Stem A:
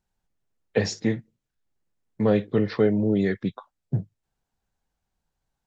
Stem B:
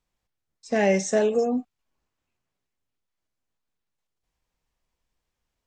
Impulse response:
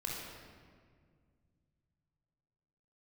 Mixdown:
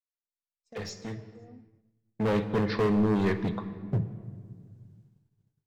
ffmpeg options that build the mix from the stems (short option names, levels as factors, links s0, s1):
-filter_complex "[0:a]volume=15,asoftclip=hard,volume=0.0668,volume=0.944,afade=t=in:st=1.71:d=0.66:silence=0.298538,asplit=3[s0][s1][s2];[s1]volume=0.335[s3];[1:a]acompressor=threshold=0.0224:ratio=3,volume=0.15[s4];[s2]apad=whole_len=250026[s5];[s4][s5]sidechaincompress=threshold=0.00447:ratio=8:attack=16:release=615[s6];[2:a]atrim=start_sample=2205[s7];[s3][s7]afir=irnorm=-1:irlink=0[s8];[s0][s6][s8]amix=inputs=3:normalize=0,agate=range=0.0224:threshold=0.00251:ratio=3:detection=peak"